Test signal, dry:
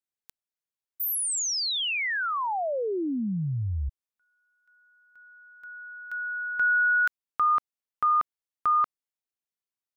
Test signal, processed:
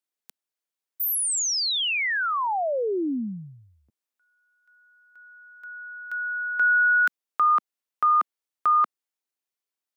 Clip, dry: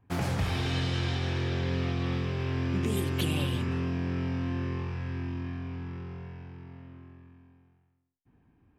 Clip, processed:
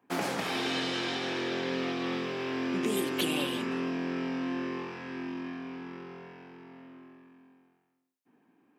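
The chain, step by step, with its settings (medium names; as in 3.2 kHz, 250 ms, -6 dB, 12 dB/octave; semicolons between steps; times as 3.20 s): high-pass 230 Hz 24 dB/octave; trim +3 dB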